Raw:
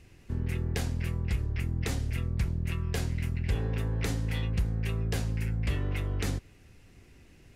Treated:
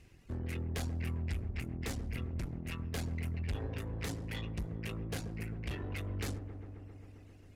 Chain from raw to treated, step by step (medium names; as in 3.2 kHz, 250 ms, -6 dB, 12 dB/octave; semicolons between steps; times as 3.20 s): reverb removal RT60 1.3 s; valve stage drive 33 dB, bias 0.7; on a send: feedback echo behind a low-pass 133 ms, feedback 81%, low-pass 960 Hz, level -9 dB